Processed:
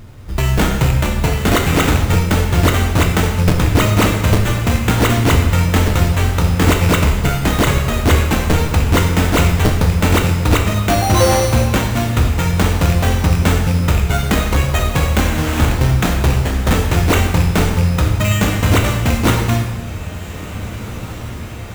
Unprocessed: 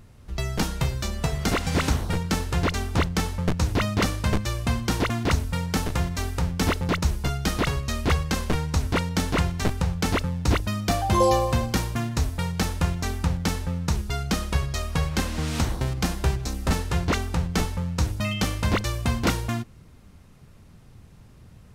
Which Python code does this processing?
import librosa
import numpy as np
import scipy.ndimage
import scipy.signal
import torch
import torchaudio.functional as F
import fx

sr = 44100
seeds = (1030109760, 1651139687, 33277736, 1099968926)

p1 = fx.rattle_buzz(x, sr, strikes_db=-21.0, level_db=-26.0)
p2 = fx.rider(p1, sr, range_db=4, speed_s=2.0)
p3 = p1 + (p2 * 10.0 ** (2.0 / 20.0))
p4 = fx.sample_hold(p3, sr, seeds[0], rate_hz=5000.0, jitter_pct=0)
p5 = np.clip(10.0 ** (11.0 / 20.0) * p4, -1.0, 1.0) / 10.0 ** (11.0 / 20.0)
p6 = p5 + fx.echo_diffused(p5, sr, ms=1899, feedback_pct=65, wet_db=-15, dry=0)
p7 = fx.rev_plate(p6, sr, seeds[1], rt60_s=1.0, hf_ratio=0.95, predelay_ms=0, drr_db=2.5)
y = p7 * 10.0 ** (2.0 / 20.0)